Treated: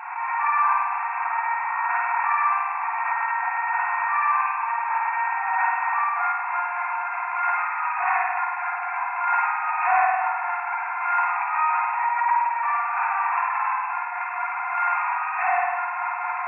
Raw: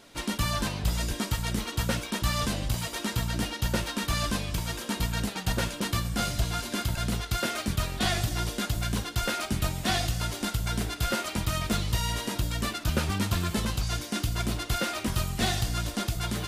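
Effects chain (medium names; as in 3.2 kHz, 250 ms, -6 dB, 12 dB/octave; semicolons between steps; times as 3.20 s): peaking EQ 940 Hz +12.5 dB 0.6 oct; spring tank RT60 1.5 s, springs 49 ms, chirp 60 ms, DRR -7 dB; FFT band-pass 690–2700 Hz; swell ahead of each attack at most 46 dB/s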